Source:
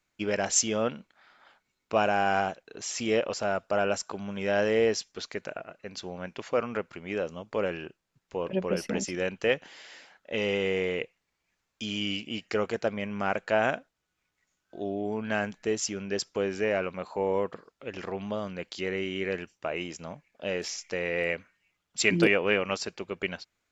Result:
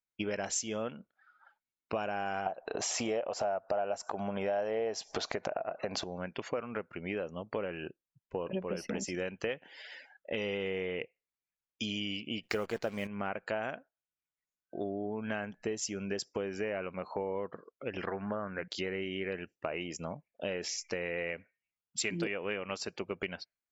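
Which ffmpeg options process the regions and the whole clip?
-filter_complex "[0:a]asettb=1/sr,asplit=3[a][b][c];[a]atrim=end=2.464[d];[b]atrim=start=2.46:end=6.04,asetpts=PTS-STARTPTS,afade=t=in:d=0.004:c=qsin,afade=t=out:st=3.576:d=0.004:c=qsin,equalizer=f=710:t=o:w=1.1:g=15,acompressor=mode=upward:threshold=-17dB:ratio=2.5:attack=3.2:release=140:knee=2.83:detection=peak[e];[c]atrim=start=6.036[f];[d][e]acrossfade=d=0.004:c1=hsin:c2=qsin[g];[g][f]acrossfade=d=0.004:c1=qsin:c2=hsin,asettb=1/sr,asplit=3[h][i][j];[h]atrim=end=12.434[k];[i]atrim=start=12.43:end=13.07,asetpts=PTS-STARTPTS,afade=t=in:d=0.004:c=qsin,afade=t=out:st=0.636:d=0.004:c=qsin,acontrast=89,acrusher=bits=7:dc=4:mix=0:aa=0.000001[l];[j]atrim=start=13.066[m];[k][l]acrossfade=d=0.004:c1=hsin:c2=qsin[n];[n][m]acrossfade=d=0.004:c1=qsin:c2=hsin,asettb=1/sr,asplit=3[o][p][q];[o]atrim=end=18.074[r];[p]atrim=start=18.07:end=18.68,asetpts=PTS-STARTPTS,afade=t=in:d=0.004:c=qsin,afade=t=out:st=0.606:d=0.004:c=qsin,lowpass=f=1.6k:t=q:w=3.8,bandreject=f=60:t=h:w=6,bandreject=f=120:t=h:w=6,bandreject=f=180:t=h:w=6,bandreject=f=240:t=h:w=6[s];[q]atrim=start=18.676[t];[r][s]acrossfade=d=0.004:c1=hsin:c2=qsin[u];[u][t]acrossfade=d=0.004:c1=qsin:c2=hsin,afftdn=nr=25:nf=-50,acompressor=threshold=-36dB:ratio=5,volume=3dB"

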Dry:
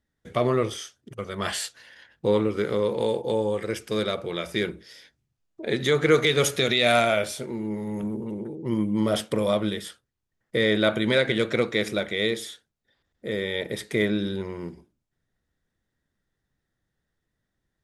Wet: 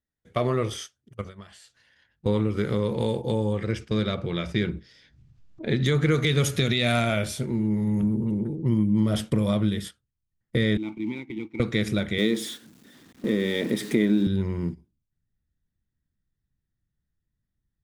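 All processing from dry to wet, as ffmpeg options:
-filter_complex "[0:a]asettb=1/sr,asplit=3[a][b][c];[a]atrim=end=1.214[d];[b]atrim=start=1.21:end=2.26,asetpts=PTS-STARTPTS,afade=t=in:d=0.004:c=qsin,afade=t=out:st=1.046:d=0.004:c=qsin,lowpass=10k,acompressor=threshold=-35dB:ratio=12:attack=3.2:release=140:knee=1:detection=peak[e];[c]atrim=start=2.256[f];[d][e]acrossfade=d=0.004:c1=hsin:c2=qsin[g];[g][f]acrossfade=d=0.004:c1=qsin:c2=hsin,asettb=1/sr,asplit=3[h][i][j];[h]atrim=end=3.534[k];[i]atrim=start=3.53:end=5.86,asetpts=PTS-STARTPTS,afade=t=in:d=0.004:c=qsin,afade=t=out:st=2.326:d=0.004:c=qsin,lowpass=5.5k,acompressor=mode=upward:threshold=-34dB:ratio=2.5:attack=3.2:release=140:knee=2.83:detection=peak[l];[j]atrim=start=5.856[m];[k][l]acrossfade=d=0.004:c1=hsin:c2=qsin[n];[n][m]acrossfade=d=0.004:c1=qsin:c2=hsin,asettb=1/sr,asplit=3[o][p][q];[o]atrim=end=10.774[r];[p]atrim=start=10.77:end=11.6,asetpts=PTS-STARTPTS,afade=t=in:d=0.004:c=qsin,afade=t=out:st=0.826:d=0.004:c=qsin,acrusher=bits=3:mode=log:mix=0:aa=0.000001,asplit=3[s][t][u];[s]bandpass=f=300:t=q:w=8,volume=0dB[v];[t]bandpass=f=870:t=q:w=8,volume=-6dB[w];[u]bandpass=f=2.24k:t=q:w=8,volume=-9dB[x];[v][w][x]amix=inputs=3:normalize=0[y];[q]atrim=start=11.596[z];[r][y]acrossfade=d=0.004:c1=hsin:c2=qsin[aa];[aa][z]acrossfade=d=0.004:c1=qsin:c2=hsin,asettb=1/sr,asplit=3[ab][ac][ad];[ab]atrim=end=12.184[ae];[ac]atrim=start=12.18:end=14.27,asetpts=PTS-STARTPTS,afade=t=in:d=0.004:c=qsin,afade=t=out:st=2.086:d=0.004:c=qsin,aeval=exprs='val(0)+0.5*0.0141*sgn(val(0))':c=same,highpass=f=260:t=q:w=2.4[af];[ad]atrim=start=14.266[ag];[ae][af]acrossfade=d=0.004:c1=hsin:c2=qsin[ah];[ah][ag]acrossfade=d=0.004:c1=qsin:c2=hsin,agate=range=-12dB:threshold=-37dB:ratio=16:detection=peak,asubboost=boost=5:cutoff=220,acompressor=threshold=-20dB:ratio=2.5"

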